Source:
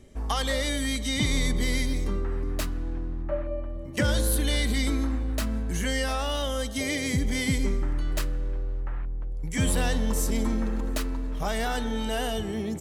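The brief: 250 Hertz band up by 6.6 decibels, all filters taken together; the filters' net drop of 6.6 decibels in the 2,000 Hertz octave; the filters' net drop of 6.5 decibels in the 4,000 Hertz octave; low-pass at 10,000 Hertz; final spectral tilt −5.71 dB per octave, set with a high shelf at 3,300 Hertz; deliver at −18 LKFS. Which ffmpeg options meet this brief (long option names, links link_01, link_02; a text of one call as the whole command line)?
ffmpeg -i in.wav -af "lowpass=10000,equalizer=frequency=250:width_type=o:gain=7.5,equalizer=frequency=2000:width_type=o:gain=-7,highshelf=frequency=3300:gain=3.5,equalizer=frequency=4000:width_type=o:gain=-8.5,volume=8.5dB" out.wav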